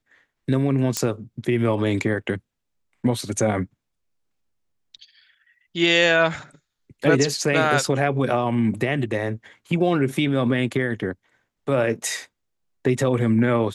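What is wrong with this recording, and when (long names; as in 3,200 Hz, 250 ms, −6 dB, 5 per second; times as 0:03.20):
0:00.97: click −7 dBFS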